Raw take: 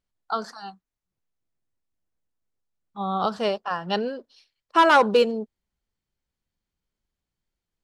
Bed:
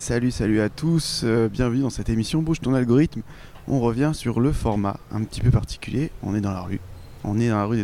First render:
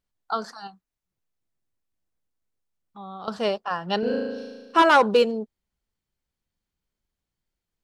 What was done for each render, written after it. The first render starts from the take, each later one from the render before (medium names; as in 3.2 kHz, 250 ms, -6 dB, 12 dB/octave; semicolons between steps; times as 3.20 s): 0.67–3.28 s: compression 2.5:1, threshold -42 dBFS; 3.99–4.82 s: flutter echo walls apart 6.3 m, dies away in 1.4 s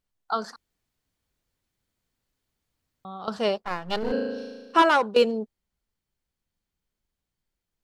0.56–3.05 s: room tone; 3.62–4.12 s: partial rectifier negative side -12 dB; 4.76–5.16 s: fade out, to -14.5 dB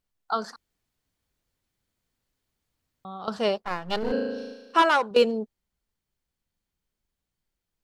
4.54–5.11 s: bass shelf 430 Hz -6.5 dB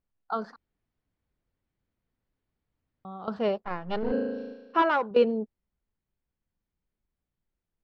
FFT filter 270 Hz 0 dB, 2.2 kHz -6 dB, 5.1 kHz -16 dB, 7.7 kHz -27 dB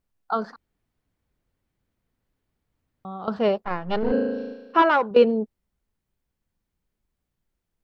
trim +5.5 dB